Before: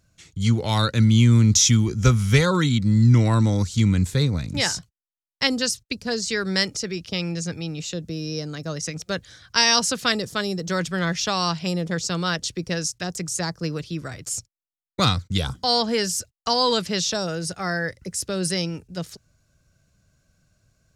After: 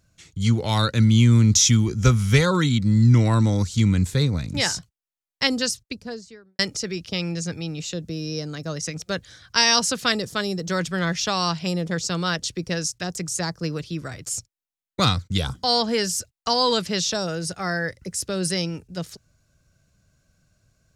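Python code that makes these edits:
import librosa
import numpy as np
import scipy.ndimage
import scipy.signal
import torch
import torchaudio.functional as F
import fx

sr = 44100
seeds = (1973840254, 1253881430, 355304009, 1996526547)

y = fx.studio_fade_out(x, sr, start_s=5.6, length_s=0.99)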